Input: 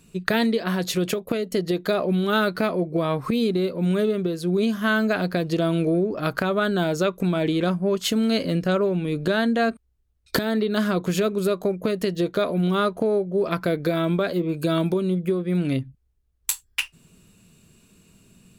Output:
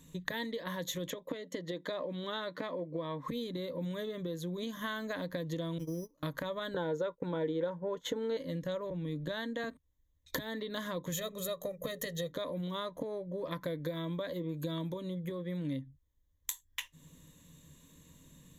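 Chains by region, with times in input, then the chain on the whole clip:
0:01.10–0:03.28: high-pass filter 200 Hz + high-frequency loss of the air 68 metres + notch filter 6,300 Hz, Q 28
0:05.78–0:06.23: parametric band 610 Hz −7.5 dB 0.94 octaves + noise gate −24 dBFS, range −33 dB + bad sample-rate conversion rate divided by 8×, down filtered, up hold
0:06.74–0:08.37: low-pass filter 3,800 Hz 6 dB per octave + downward expander −29 dBFS + hollow resonant body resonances 470/850/1,400 Hz, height 16 dB, ringing for 25 ms
0:08.90–0:09.64: noise gate with hold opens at −19 dBFS, closes at −22 dBFS + multiband upward and downward expander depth 40%
0:11.12–0:12.32: high-shelf EQ 5,700 Hz +9 dB + mains-hum notches 60/120/180/240/300/360/420 Hz + comb filter 1.6 ms, depth 70%
whole clip: EQ curve with evenly spaced ripples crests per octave 1.1, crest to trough 14 dB; downward compressor 3 to 1, threshold −33 dBFS; level −5 dB

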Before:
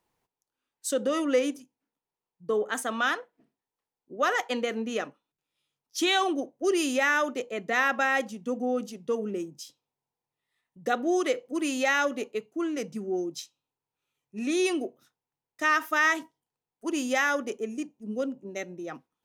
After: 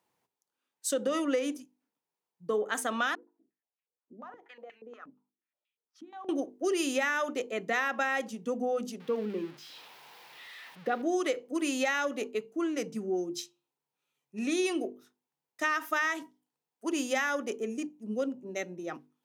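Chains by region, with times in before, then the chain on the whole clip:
0:03.15–0:06.29: downward compressor 5 to 1, threshold −34 dBFS + band-pass on a step sequencer 8.4 Hz 230–2,500 Hz
0:09.00–0:11.02: spike at every zero crossing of −25 dBFS + high-frequency loss of the air 360 metres
whole clip: high-pass filter 120 Hz; mains-hum notches 50/100/150/200/250/300/350/400/450 Hz; downward compressor, threshold −25 dBFS

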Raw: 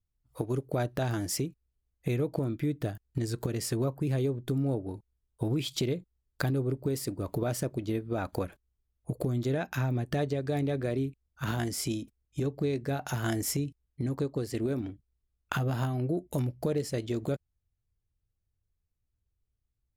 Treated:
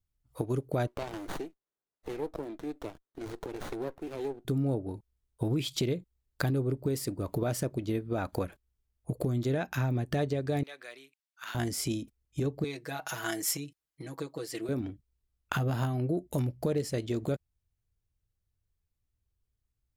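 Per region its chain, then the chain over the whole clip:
0:00.87–0:04.45: high-pass filter 330 Hz 24 dB per octave + parametric band 760 Hz −5 dB 1.3 octaves + windowed peak hold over 17 samples
0:10.63–0:11.55: high-pass filter 1,400 Hz + high-shelf EQ 8,900 Hz −5.5 dB
0:12.64–0:14.69: high-pass filter 820 Hz 6 dB per octave + comb filter 6.2 ms, depth 86%
whole clip: no processing

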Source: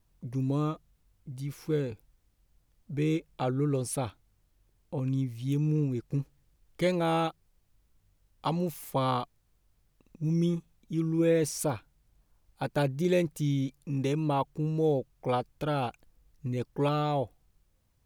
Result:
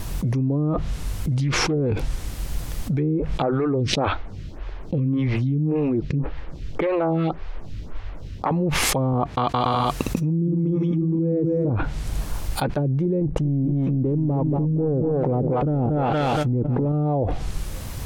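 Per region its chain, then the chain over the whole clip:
0:01.34–0:01.86: low-pass filter 8,600 Hz + high-shelf EQ 5,600 Hz −7 dB + highs frequency-modulated by the lows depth 0.21 ms
0:03.42–0:08.51: phase distortion by the signal itself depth 0.12 ms + high-frequency loss of the air 210 metres + phaser with staggered stages 1.8 Hz
0:09.13–0:11.70: high-pass filter 58 Hz + bouncing-ball delay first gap 240 ms, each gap 0.7×, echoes 5
0:13.21–0:16.92: leveller curve on the samples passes 2 + feedback echo at a low word length 234 ms, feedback 55%, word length 8 bits, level −11 dB
whole clip: treble cut that deepens with the level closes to 350 Hz, closed at −23 dBFS; envelope flattener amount 100%

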